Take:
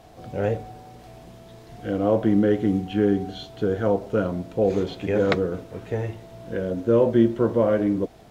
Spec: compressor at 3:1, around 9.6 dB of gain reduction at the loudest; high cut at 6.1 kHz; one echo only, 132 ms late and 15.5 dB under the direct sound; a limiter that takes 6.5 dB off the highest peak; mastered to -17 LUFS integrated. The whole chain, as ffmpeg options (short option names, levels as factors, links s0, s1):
-af "lowpass=6100,acompressor=threshold=0.0501:ratio=3,alimiter=limit=0.0944:level=0:latency=1,aecho=1:1:132:0.168,volume=5.62"